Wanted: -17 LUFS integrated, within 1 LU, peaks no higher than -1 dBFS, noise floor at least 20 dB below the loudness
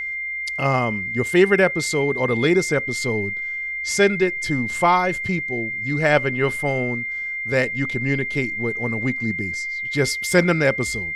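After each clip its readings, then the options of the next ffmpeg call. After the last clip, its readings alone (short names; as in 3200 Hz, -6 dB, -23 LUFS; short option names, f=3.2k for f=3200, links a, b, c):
steady tone 2100 Hz; tone level -25 dBFS; loudness -21.0 LUFS; peak -3.0 dBFS; loudness target -17.0 LUFS
-> -af "bandreject=f=2.1k:w=30"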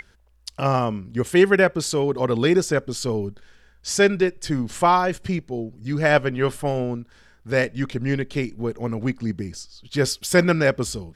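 steady tone none; loudness -22.0 LUFS; peak -3.5 dBFS; loudness target -17.0 LUFS
-> -af "volume=5dB,alimiter=limit=-1dB:level=0:latency=1"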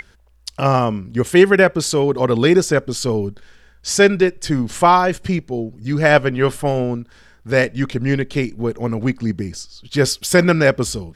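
loudness -17.5 LUFS; peak -1.0 dBFS; noise floor -50 dBFS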